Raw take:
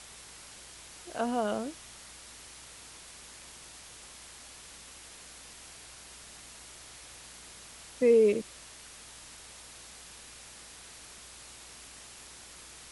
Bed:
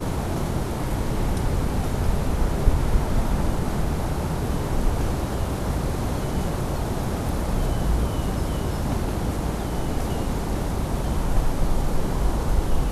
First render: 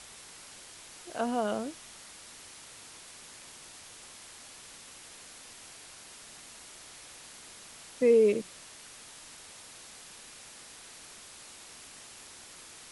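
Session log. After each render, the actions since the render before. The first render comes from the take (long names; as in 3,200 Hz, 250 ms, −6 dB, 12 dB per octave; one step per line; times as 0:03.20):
hum removal 60 Hz, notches 3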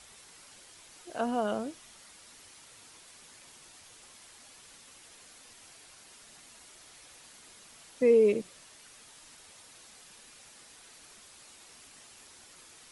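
broadband denoise 6 dB, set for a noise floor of −50 dBFS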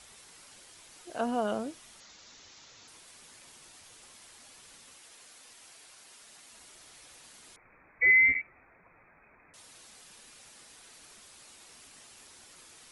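0:02.00–0:02.88: bad sample-rate conversion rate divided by 3×, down none, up filtered
0:04.95–0:06.53: low-shelf EQ 250 Hz −9 dB
0:07.56–0:09.54: voice inversion scrambler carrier 2,500 Hz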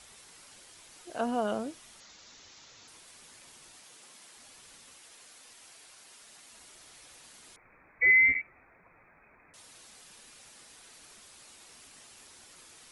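0:03.80–0:04.37: high-pass filter 140 Hz 24 dB per octave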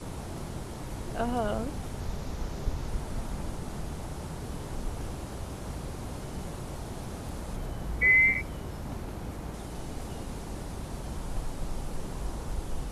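mix in bed −12.5 dB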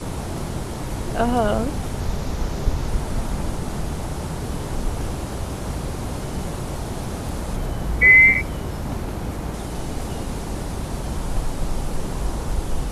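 level +10 dB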